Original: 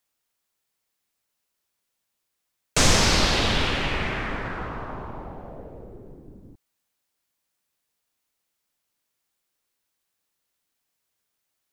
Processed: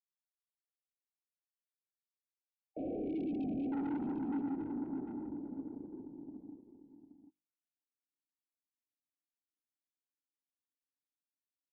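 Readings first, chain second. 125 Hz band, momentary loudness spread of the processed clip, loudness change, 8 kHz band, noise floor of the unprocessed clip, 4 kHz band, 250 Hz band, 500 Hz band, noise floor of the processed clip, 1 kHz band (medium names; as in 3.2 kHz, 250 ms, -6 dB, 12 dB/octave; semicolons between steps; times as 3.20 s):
-22.5 dB, 14 LU, -17.0 dB, under -40 dB, -79 dBFS, under -40 dB, -3.5 dB, -14.0 dB, under -85 dBFS, -20.0 dB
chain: sorted samples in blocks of 16 samples; hum notches 50/100/150/200/250/300/350 Hz; band-pass sweep 2.8 kHz -> 260 Hz, 1.81–3.40 s; dynamic bell 280 Hz, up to +4 dB, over -46 dBFS, Q 2.9; waveshaping leveller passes 3; in parallel at -6 dB: small samples zeroed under -35 dBFS; on the sum: cascade formant filter u; saturation -31 dBFS, distortion -8 dB; spectral selection erased 1.97–3.72 s, 790–2200 Hz; on a send: multi-tap echo 629/749 ms -16.5/-10.5 dB; on the sum: trim -3 dB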